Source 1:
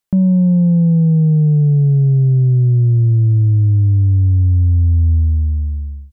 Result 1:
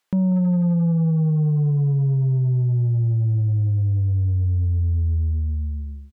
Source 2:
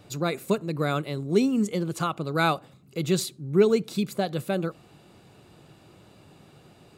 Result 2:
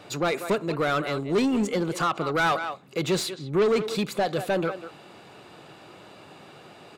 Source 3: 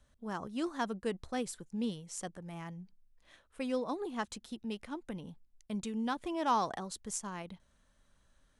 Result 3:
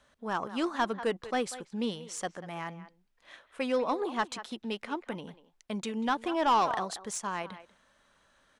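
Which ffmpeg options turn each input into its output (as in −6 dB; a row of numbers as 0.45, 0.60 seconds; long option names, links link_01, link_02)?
-filter_complex "[0:a]asplit=2[link_01][link_02];[link_02]adelay=190,highpass=300,lowpass=3400,asoftclip=type=hard:threshold=-18.5dB,volume=-15dB[link_03];[link_01][link_03]amix=inputs=2:normalize=0,asplit=2[link_04][link_05];[link_05]highpass=frequency=720:poles=1,volume=24dB,asoftclip=type=tanh:threshold=-8dB[link_06];[link_04][link_06]amix=inputs=2:normalize=0,lowpass=frequency=2700:poles=1,volume=-6dB,volume=-6dB"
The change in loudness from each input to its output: −8.0, +0.5, +5.5 LU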